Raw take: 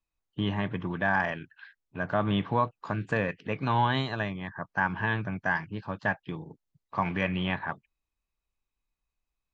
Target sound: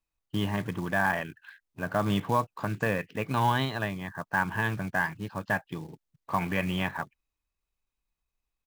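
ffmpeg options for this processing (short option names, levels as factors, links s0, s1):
-af "acrusher=bits=5:mode=log:mix=0:aa=0.000001,atempo=1.1"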